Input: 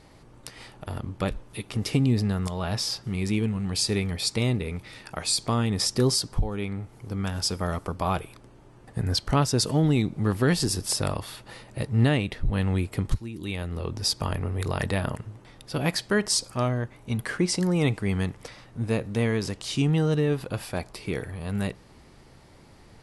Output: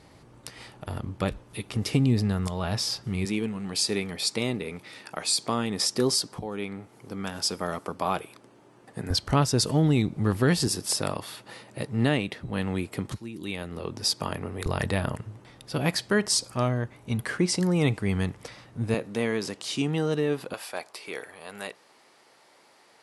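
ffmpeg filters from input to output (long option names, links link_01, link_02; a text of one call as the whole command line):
ffmpeg -i in.wav -af "asetnsamples=nb_out_samples=441:pad=0,asendcmd='3.25 highpass f 210;9.1 highpass f 51;10.68 highpass f 160;14.66 highpass f 62;18.94 highpass f 220;20.54 highpass f 550',highpass=54" out.wav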